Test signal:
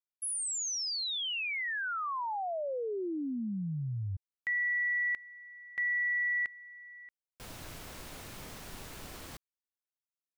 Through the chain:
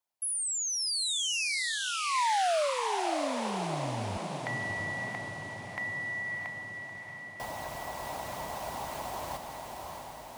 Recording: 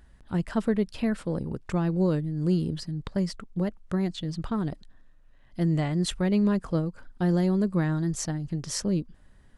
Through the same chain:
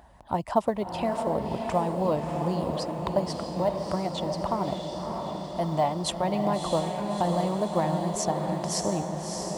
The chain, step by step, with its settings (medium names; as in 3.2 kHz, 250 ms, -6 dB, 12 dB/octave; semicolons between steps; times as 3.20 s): high-pass 45 Hz 24 dB/octave; high-order bell 780 Hz +14.5 dB 1.1 oct; harmonic-percussive split percussive +8 dB; dynamic bell 1.6 kHz, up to -6 dB, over -45 dBFS, Q 3.3; in parallel at +1.5 dB: compression 8:1, threshold -35 dBFS; on the sum: companded quantiser 8-bit; on a send: echo that smears into a reverb 641 ms, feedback 65%, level -4.5 dB; on the sum: trim -8.5 dB